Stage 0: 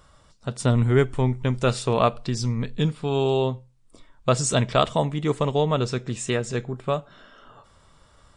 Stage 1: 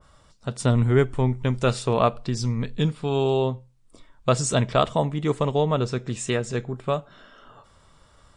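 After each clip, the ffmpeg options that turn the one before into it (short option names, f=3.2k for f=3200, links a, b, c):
-af "adynamicequalizer=threshold=0.0158:dfrequency=1800:dqfactor=0.7:tfrequency=1800:tqfactor=0.7:attack=5:release=100:ratio=0.375:range=2.5:mode=cutabove:tftype=highshelf"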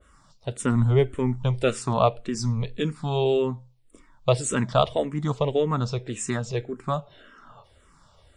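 -filter_complex "[0:a]asplit=2[a][b];[b]afreqshift=-1.8[c];[a][c]amix=inputs=2:normalize=1,volume=1.5dB"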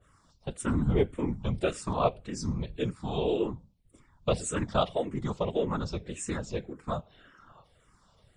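-af "afftfilt=real='hypot(re,im)*cos(2*PI*random(0))':imag='hypot(re,im)*sin(2*PI*random(1))':win_size=512:overlap=0.75"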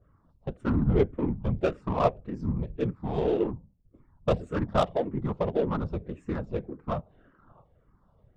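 -af "adynamicsmooth=sensitivity=2:basefreq=920,volume=2.5dB"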